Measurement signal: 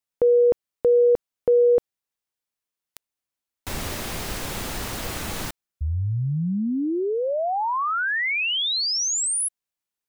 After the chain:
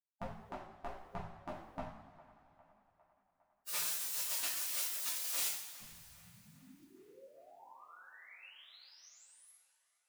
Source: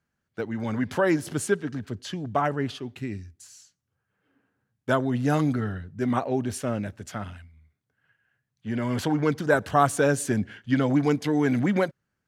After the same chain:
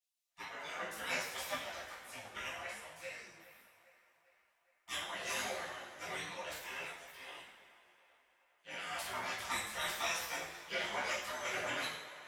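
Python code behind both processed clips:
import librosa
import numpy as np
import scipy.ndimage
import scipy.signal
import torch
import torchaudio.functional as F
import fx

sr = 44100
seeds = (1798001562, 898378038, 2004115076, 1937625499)

p1 = fx.spec_gate(x, sr, threshold_db=-25, keep='weak')
p2 = fx.rev_double_slope(p1, sr, seeds[0], early_s=0.6, late_s=3.0, knee_db=-16, drr_db=-6.5)
p3 = fx.chorus_voices(p2, sr, voices=6, hz=0.61, base_ms=15, depth_ms=4.5, mix_pct=45)
y = p3 + fx.echo_wet_bandpass(p3, sr, ms=405, feedback_pct=60, hz=1100.0, wet_db=-17, dry=0)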